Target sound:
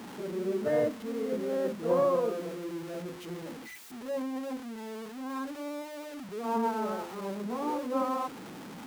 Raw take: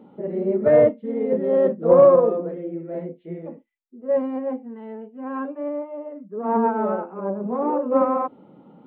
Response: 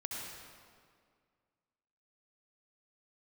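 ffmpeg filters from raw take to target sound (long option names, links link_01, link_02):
-af "aeval=exprs='val(0)+0.5*0.0355*sgn(val(0))':channel_layout=same,highpass=frequency=130:poles=1,equalizer=frequency=570:width=3.6:gain=-6,volume=-9dB"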